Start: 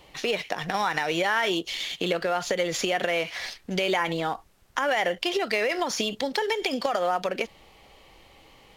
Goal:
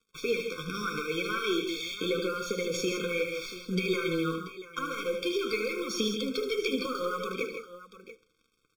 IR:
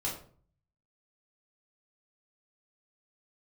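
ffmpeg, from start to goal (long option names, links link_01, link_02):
-filter_complex "[0:a]acrusher=bits=6:mix=0:aa=0.5,flanger=delay=4.3:depth=7.8:regen=41:speed=0.83:shape=sinusoidal,aeval=exprs='0.211*(cos(1*acos(clip(val(0)/0.211,-1,1)))-cos(1*PI/2))+0.0119*(cos(2*acos(clip(val(0)/0.211,-1,1)))-cos(2*PI/2))':channel_layout=same,aecho=1:1:76|137|161|685:0.355|0.266|0.376|0.188,asplit=2[link_01][link_02];[1:a]atrim=start_sample=2205[link_03];[link_02][link_03]afir=irnorm=-1:irlink=0,volume=-16.5dB[link_04];[link_01][link_04]amix=inputs=2:normalize=0,afftfilt=real='re*eq(mod(floor(b*sr/1024/530),2),0)':imag='im*eq(mod(floor(b*sr/1024/530),2),0)':win_size=1024:overlap=0.75"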